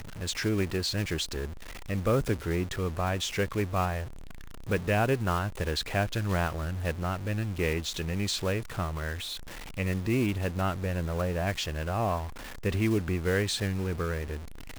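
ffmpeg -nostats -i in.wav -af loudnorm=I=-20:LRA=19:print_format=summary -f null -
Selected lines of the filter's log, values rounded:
Input Integrated:    -30.3 LUFS
Input True Peak:     -14.4 dBTP
Input LRA:             1.2 LU
Input Threshold:     -40.5 LUFS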